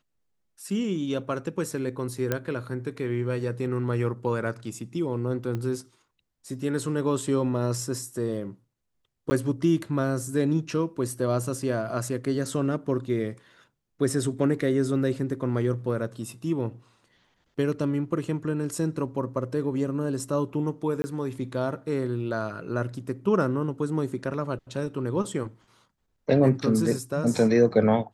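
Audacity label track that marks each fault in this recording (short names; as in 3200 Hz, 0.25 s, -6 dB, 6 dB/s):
2.320000	2.320000	pop -11 dBFS
5.550000	5.550000	pop -20 dBFS
9.300000	9.310000	gap 10 ms
21.020000	21.040000	gap 20 ms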